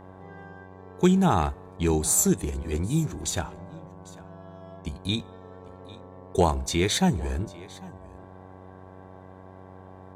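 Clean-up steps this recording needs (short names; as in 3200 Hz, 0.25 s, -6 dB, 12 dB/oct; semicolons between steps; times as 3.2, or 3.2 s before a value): de-hum 93.6 Hz, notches 12; inverse comb 0.798 s -21 dB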